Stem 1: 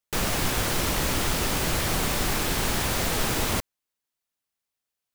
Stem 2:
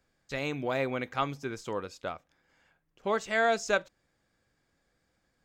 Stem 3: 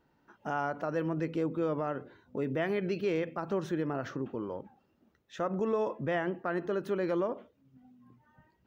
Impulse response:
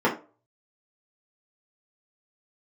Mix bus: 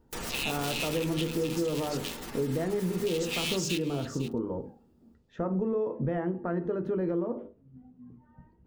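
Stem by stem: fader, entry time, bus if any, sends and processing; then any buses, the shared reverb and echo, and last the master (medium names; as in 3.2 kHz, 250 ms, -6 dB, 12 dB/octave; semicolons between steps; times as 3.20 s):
-12.0 dB, 0.00 s, send -23.5 dB, no echo send, spectral gate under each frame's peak -25 dB strong; treble shelf 5.2 kHz +9.5 dB; auto duck -7 dB, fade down 1.70 s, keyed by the second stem
-2.0 dB, 0.00 s, send -18.5 dB, echo send -14.5 dB, cycle switcher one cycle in 3, inverted; Chebyshev high-pass 2.6 kHz, order 5; waveshaping leveller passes 3
-3.0 dB, 0.00 s, send -22.5 dB, no echo send, tilt EQ -4.5 dB/octave; hum notches 50/100/150/200/250/300/350/400/450/500 Hz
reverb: on, RT60 0.35 s, pre-delay 3 ms
echo: delay 504 ms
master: compression, threshold -26 dBFS, peak gain reduction 7.5 dB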